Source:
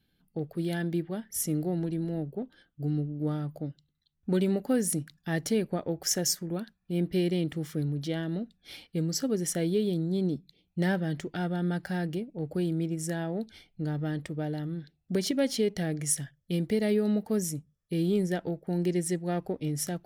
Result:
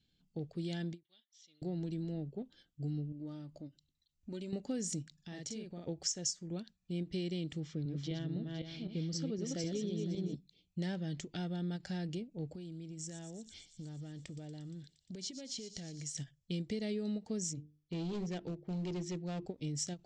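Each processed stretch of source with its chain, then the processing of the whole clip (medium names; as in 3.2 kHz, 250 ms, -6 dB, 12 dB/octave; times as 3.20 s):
1.03–1.62 s: gate -48 dBFS, range -8 dB + band-pass filter 3.7 kHz, Q 5 + distance through air 180 m
3.12–4.53 s: compression 2:1, threshold -41 dBFS + band-stop 3.5 kHz, Q 19 + comb 3.3 ms, depth 41%
5.14–5.87 s: doubling 46 ms -2 dB + compression 2:1, threshold -45 dBFS
7.60–10.35 s: backward echo that repeats 255 ms, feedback 40%, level -3 dB + distance through air 150 m
12.52–16.15 s: compression 10:1, threshold -37 dBFS + feedback echo behind a high-pass 117 ms, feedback 79%, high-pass 4.8 kHz, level -9 dB
17.53–19.46 s: boxcar filter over 5 samples + hum notches 50/100/150/200/250/300/350/400/450 Hz + hard clipper -28 dBFS
whole clip: FFT filter 130 Hz 0 dB, 1.6 kHz -8 dB, 2.6 kHz +1 dB, 7.6 kHz +8 dB, 11 kHz -30 dB; compression 3:1, threshold -31 dBFS; endings held to a fixed fall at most 380 dB/s; trim -4 dB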